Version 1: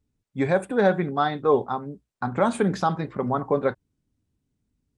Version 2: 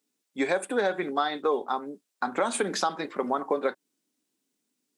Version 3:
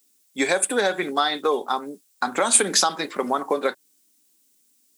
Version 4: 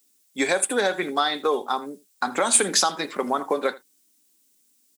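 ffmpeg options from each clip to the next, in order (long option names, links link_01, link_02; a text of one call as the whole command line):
ffmpeg -i in.wav -af "highpass=frequency=260:width=0.5412,highpass=frequency=260:width=1.3066,highshelf=frequency=2400:gain=11,acompressor=threshold=-22dB:ratio=6" out.wav
ffmpeg -i in.wav -af "crystalizer=i=4:c=0,volume=3dB" out.wav
ffmpeg -i in.wav -filter_complex "[0:a]aecho=1:1:81:0.0944,asplit=2[link_01][link_02];[link_02]asoftclip=type=tanh:threshold=-10.5dB,volume=-8.5dB[link_03];[link_01][link_03]amix=inputs=2:normalize=0,volume=-3.5dB" out.wav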